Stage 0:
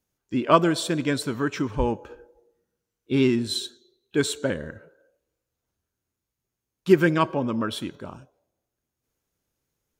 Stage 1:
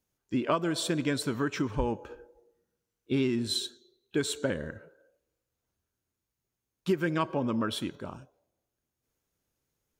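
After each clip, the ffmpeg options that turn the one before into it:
ffmpeg -i in.wav -af "acompressor=threshold=-22dB:ratio=6,volume=-2dB" out.wav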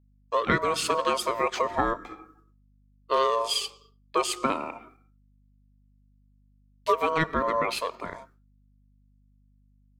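ffmpeg -i in.wav -af "aeval=exprs='val(0)*sin(2*PI*800*n/s)':channel_layout=same,agate=range=-33dB:threshold=-58dB:ratio=3:detection=peak,aeval=exprs='val(0)+0.000447*(sin(2*PI*50*n/s)+sin(2*PI*2*50*n/s)/2+sin(2*PI*3*50*n/s)/3+sin(2*PI*4*50*n/s)/4+sin(2*PI*5*50*n/s)/5)':channel_layout=same,volume=6.5dB" out.wav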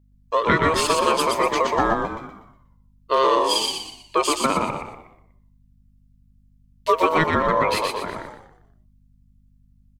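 ffmpeg -i in.wav -filter_complex "[0:a]asplit=6[link_01][link_02][link_03][link_04][link_05][link_06];[link_02]adelay=121,afreqshift=-62,volume=-3.5dB[link_07];[link_03]adelay=242,afreqshift=-124,volume=-11.9dB[link_08];[link_04]adelay=363,afreqshift=-186,volume=-20.3dB[link_09];[link_05]adelay=484,afreqshift=-248,volume=-28.7dB[link_10];[link_06]adelay=605,afreqshift=-310,volume=-37.1dB[link_11];[link_01][link_07][link_08][link_09][link_10][link_11]amix=inputs=6:normalize=0,volume=4.5dB" out.wav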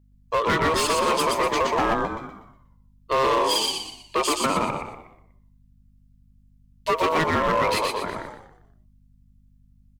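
ffmpeg -i in.wav -af "asoftclip=type=hard:threshold=-17dB" out.wav

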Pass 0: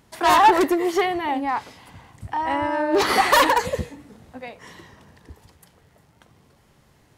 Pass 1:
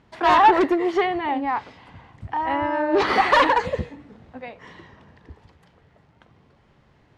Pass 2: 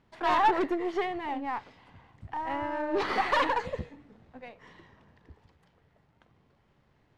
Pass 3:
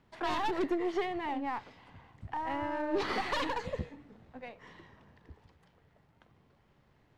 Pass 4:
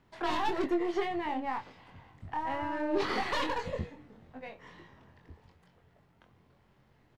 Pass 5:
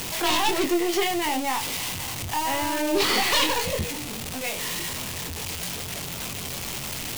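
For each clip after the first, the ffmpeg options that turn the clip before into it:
ffmpeg -i in.wav -af "lowpass=3300" out.wav
ffmpeg -i in.wav -af "aeval=exprs='if(lt(val(0),0),0.708*val(0),val(0))':channel_layout=same,volume=-8dB" out.wav
ffmpeg -i in.wav -filter_complex "[0:a]acrossover=split=350|3000[link_01][link_02][link_03];[link_02]acompressor=threshold=-33dB:ratio=6[link_04];[link_01][link_04][link_03]amix=inputs=3:normalize=0" out.wav
ffmpeg -i in.wav -filter_complex "[0:a]asplit=2[link_01][link_02];[link_02]adelay=23,volume=-5dB[link_03];[link_01][link_03]amix=inputs=2:normalize=0" out.wav
ffmpeg -i in.wav -af "aeval=exprs='val(0)+0.5*0.015*sgn(val(0))':channel_layout=same,aexciter=amount=3.8:drive=3.3:freq=2300,volume=5dB" out.wav

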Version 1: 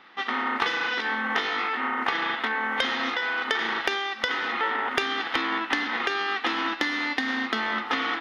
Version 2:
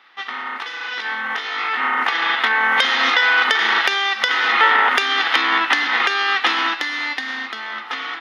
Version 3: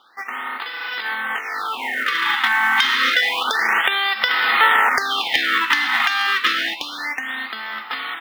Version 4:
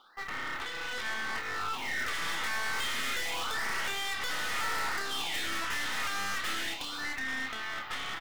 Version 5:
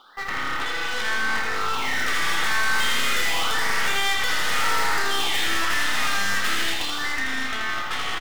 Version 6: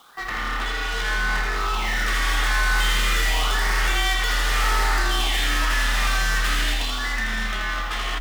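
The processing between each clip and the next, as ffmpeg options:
ffmpeg -i in.wav -af "highpass=frequency=1100:poles=1,alimiter=limit=-18dB:level=0:latency=1:release=458,dynaudnorm=framelen=310:gausssize=13:maxgain=14dB,volume=2.5dB" out.wav
ffmpeg -i in.wav -af "asubboost=boost=7.5:cutoff=110,acrusher=bits=6:mode=log:mix=0:aa=0.000001,afftfilt=real='re*(1-between(b*sr/1024,480*pow(7900/480,0.5+0.5*sin(2*PI*0.29*pts/sr))/1.41,480*pow(7900/480,0.5+0.5*sin(2*PI*0.29*pts/sr))*1.41))':imag='im*(1-between(b*sr/1024,480*pow(7900/480,0.5+0.5*sin(2*PI*0.29*pts/sr))/1.41,480*pow(7900/480,0.5+0.5*sin(2*PI*0.29*pts/sr))*1.41))':win_size=1024:overlap=0.75" out.wav
ffmpeg -i in.wav -filter_complex "[0:a]areverse,acompressor=mode=upward:threshold=-31dB:ratio=2.5,areverse,aeval=exprs='(tanh(28.2*val(0)+0.7)-tanh(0.7))/28.2':channel_layout=same,asplit=2[link_01][link_02];[link_02]adelay=30,volume=-7dB[link_03];[link_01][link_03]amix=inputs=2:normalize=0,volume=-4dB" out.wav
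ffmpeg -i in.wav -af "aecho=1:1:81|162|243|324|405|486|567:0.596|0.322|0.174|0.0938|0.0506|0.0274|0.0148,volume=8dB" out.wav
ffmpeg -i in.wav -af "acrusher=bits=8:mix=0:aa=0.000001,afreqshift=-41" out.wav

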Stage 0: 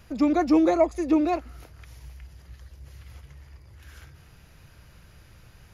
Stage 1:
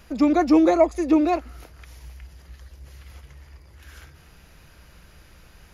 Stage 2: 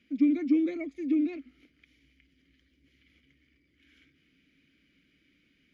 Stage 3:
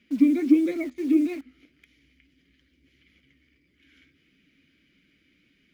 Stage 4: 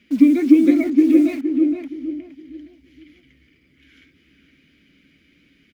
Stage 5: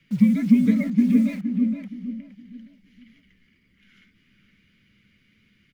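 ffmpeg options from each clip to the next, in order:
ffmpeg -i in.wav -af "equalizer=frequency=110:width_type=o:width=0.55:gain=-12,volume=3.5dB" out.wav
ffmpeg -i in.wav -filter_complex "[0:a]asplit=3[link_01][link_02][link_03];[link_01]bandpass=frequency=270:width_type=q:width=8,volume=0dB[link_04];[link_02]bandpass=frequency=2290:width_type=q:width=8,volume=-6dB[link_05];[link_03]bandpass=frequency=3010:width_type=q:width=8,volume=-9dB[link_06];[link_04][link_05][link_06]amix=inputs=3:normalize=0" out.wav
ffmpeg -i in.wav -filter_complex "[0:a]flanger=delay=4.7:depth=7.5:regen=60:speed=1.6:shape=sinusoidal,asplit=2[link_01][link_02];[link_02]acrusher=bits=7:mix=0:aa=0.000001,volume=-10.5dB[link_03];[link_01][link_03]amix=inputs=2:normalize=0,volume=7.5dB" out.wav
ffmpeg -i in.wav -filter_complex "[0:a]asplit=2[link_01][link_02];[link_02]adelay=467,lowpass=frequency=1100:poles=1,volume=-3dB,asplit=2[link_03][link_04];[link_04]adelay=467,lowpass=frequency=1100:poles=1,volume=0.33,asplit=2[link_05][link_06];[link_06]adelay=467,lowpass=frequency=1100:poles=1,volume=0.33,asplit=2[link_07][link_08];[link_08]adelay=467,lowpass=frequency=1100:poles=1,volume=0.33[link_09];[link_01][link_03][link_05][link_07][link_09]amix=inputs=5:normalize=0,volume=6.5dB" out.wav
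ffmpeg -i in.wav -af "afreqshift=-73,volume=-4.5dB" out.wav

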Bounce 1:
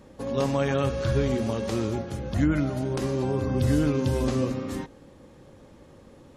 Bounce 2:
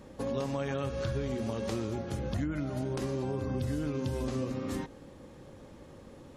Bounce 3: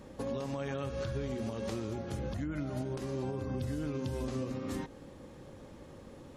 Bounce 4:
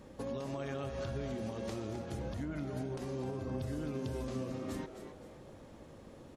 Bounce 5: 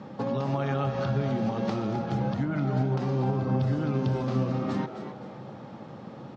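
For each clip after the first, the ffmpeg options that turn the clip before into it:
ffmpeg -i in.wav -af "acompressor=threshold=-30dB:ratio=6" out.wav
ffmpeg -i in.wav -af "alimiter=level_in=3dB:limit=-24dB:level=0:latency=1:release=271,volume=-3dB" out.wav
ffmpeg -i in.wav -filter_complex "[0:a]asplit=5[link_01][link_02][link_03][link_04][link_05];[link_02]adelay=260,afreqshift=120,volume=-10dB[link_06];[link_03]adelay=520,afreqshift=240,volume=-19.1dB[link_07];[link_04]adelay=780,afreqshift=360,volume=-28.2dB[link_08];[link_05]adelay=1040,afreqshift=480,volume=-37.4dB[link_09];[link_01][link_06][link_07][link_08][link_09]amix=inputs=5:normalize=0,volume=-3dB" out.wav
ffmpeg -i in.wav -af "highpass=frequency=110:width=0.5412,highpass=frequency=110:width=1.3066,equalizer=frequency=130:width_type=q:width=4:gain=9,equalizer=frequency=200:width_type=q:width=4:gain=9,equalizer=frequency=820:width_type=q:width=4:gain=9,equalizer=frequency=1300:width_type=q:width=4:gain=7,lowpass=frequency=5200:width=0.5412,lowpass=frequency=5200:width=1.3066,volume=7.5dB" out.wav

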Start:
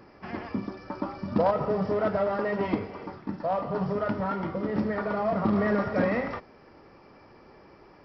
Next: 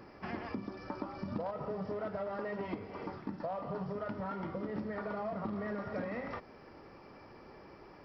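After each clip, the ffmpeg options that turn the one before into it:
ffmpeg -i in.wav -af "acompressor=threshold=-35dB:ratio=6,volume=-1dB" out.wav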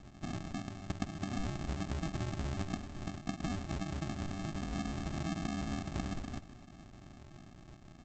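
ffmpeg -i in.wav -af "bandreject=frequency=1400:width=7.8,aresample=16000,acrusher=samples=33:mix=1:aa=0.000001,aresample=44100,aecho=1:1:251:0.168,volume=1dB" out.wav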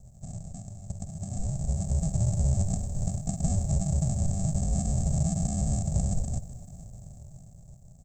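ffmpeg -i in.wav -filter_complex "[0:a]asplit=2[link_01][link_02];[link_02]alimiter=level_in=8.5dB:limit=-24dB:level=0:latency=1:release=30,volume=-8.5dB,volume=-2dB[link_03];[link_01][link_03]amix=inputs=2:normalize=0,firequalizer=gain_entry='entry(150,0);entry(320,-27);entry(480,-2);entry(1200,-29);entry(3000,-28);entry(8000,10)':delay=0.05:min_phase=1,dynaudnorm=framelen=260:gausssize=13:maxgain=10.5dB" out.wav

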